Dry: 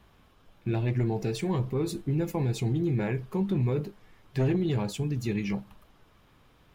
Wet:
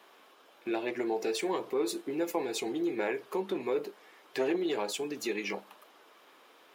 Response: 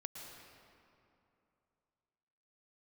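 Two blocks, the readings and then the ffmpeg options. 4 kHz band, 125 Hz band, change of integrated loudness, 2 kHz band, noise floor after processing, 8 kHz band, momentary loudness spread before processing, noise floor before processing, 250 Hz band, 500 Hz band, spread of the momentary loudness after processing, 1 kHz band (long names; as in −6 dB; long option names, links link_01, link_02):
+3.5 dB, −27.5 dB, −4.0 dB, +3.0 dB, −60 dBFS, +3.5 dB, 6 LU, −61 dBFS, −5.0 dB, +1.0 dB, 5 LU, +2.5 dB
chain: -filter_complex "[0:a]highpass=frequency=350:width=0.5412,highpass=frequency=350:width=1.3066,asplit=2[link_01][link_02];[link_02]acompressor=threshold=-40dB:ratio=6,volume=-0.5dB[link_03];[link_01][link_03]amix=inputs=2:normalize=0"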